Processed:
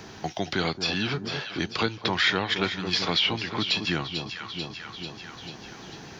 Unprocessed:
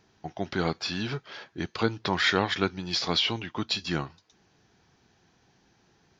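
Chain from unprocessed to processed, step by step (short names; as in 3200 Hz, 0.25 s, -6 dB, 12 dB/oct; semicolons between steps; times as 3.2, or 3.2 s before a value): dynamic EQ 2800 Hz, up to +6 dB, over -41 dBFS, Q 0.97; echo with dull and thin repeats by turns 0.221 s, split 980 Hz, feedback 63%, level -9.5 dB; three-band squash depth 70%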